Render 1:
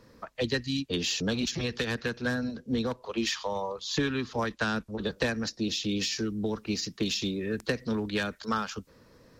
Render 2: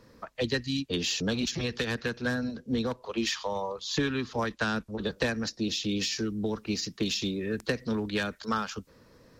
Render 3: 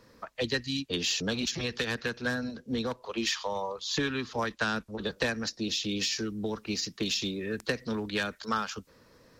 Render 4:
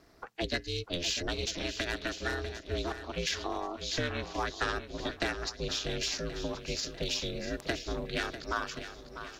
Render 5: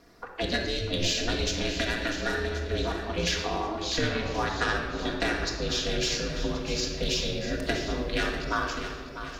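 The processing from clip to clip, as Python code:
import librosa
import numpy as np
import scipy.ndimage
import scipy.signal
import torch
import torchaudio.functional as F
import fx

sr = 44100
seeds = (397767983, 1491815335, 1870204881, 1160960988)

y1 = x
y2 = fx.low_shelf(y1, sr, hz=480.0, db=-5.0)
y2 = y2 * librosa.db_to_amplitude(1.0)
y3 = y2 * np.sin(2.0 * np.pi * 170.0 * np.arange(len(y2)) / sr)
y3 = fx.echo_swing(y3, sr, ms=1078, ratio=1.5, feedback_pct=32, wet_db=-11.0)
y4 = fx.room_shoebox(y3, sr, seeds[0], volume_m3=1800.0, walls='mixed', distance_m=1.8)
y4 = y4 * librosa.db_to_amplitude(2.5)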